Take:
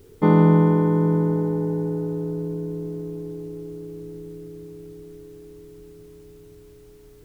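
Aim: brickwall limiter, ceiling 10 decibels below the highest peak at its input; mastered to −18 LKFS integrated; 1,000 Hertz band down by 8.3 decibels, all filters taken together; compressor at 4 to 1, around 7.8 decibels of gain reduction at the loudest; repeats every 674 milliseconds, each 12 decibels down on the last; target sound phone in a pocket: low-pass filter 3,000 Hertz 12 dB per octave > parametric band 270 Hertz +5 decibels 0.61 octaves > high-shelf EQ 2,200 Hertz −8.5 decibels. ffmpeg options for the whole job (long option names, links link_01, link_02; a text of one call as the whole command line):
ffmpeg -i in.wav -af "equalizer=frequency=1000:width_type=o:gain=-8,acompressor=threshold=-21dB:ratio=4,alimiter=limit=-20.5dB:level=0:latency=1,lowpass=3000,equalizer=frequency=270:width_type=o:width=0.61:gain=5,highshelf=frequency=2200:gain=-8.5,aecho=1:1:674|1348|2022:0.251|0.0628|0.0157,volume=10.5dB" out.wav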